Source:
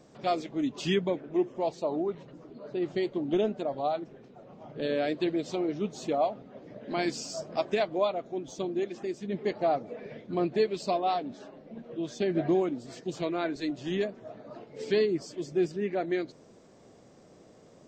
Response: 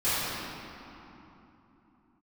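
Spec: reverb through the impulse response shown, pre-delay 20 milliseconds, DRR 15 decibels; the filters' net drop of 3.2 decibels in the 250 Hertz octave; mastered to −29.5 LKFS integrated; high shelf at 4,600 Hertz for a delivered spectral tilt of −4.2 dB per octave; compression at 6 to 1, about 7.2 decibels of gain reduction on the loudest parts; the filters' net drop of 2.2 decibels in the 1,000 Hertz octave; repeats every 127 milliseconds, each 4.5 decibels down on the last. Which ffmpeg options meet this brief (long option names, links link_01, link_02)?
-filter_complex "[0:a]equalizer=frequency=250:width_type=o:gain=-5,equalizer=frequency=1000:width_type=o:gain=-3.5,highshelf=frequency=4600:gain=8,acompressor=threshold=-31dB:ratio=6,aecho=1:1:127|254|381|508|635|762|889|1016|1143:0.596|0.357|0.214|0.129|0.0772|0.0463|0.0278|0.0167|0.01,asplit=2[link_01][link_02];[1:a]atrim=start_sample=2205,adelay=20[link_03];[link_02][link_03]afir=irnorm=-1:irlink=0,volume=-29dB[link_04];[link_01][link_04]amix=inputs=2:normalize=0,volume=6dB"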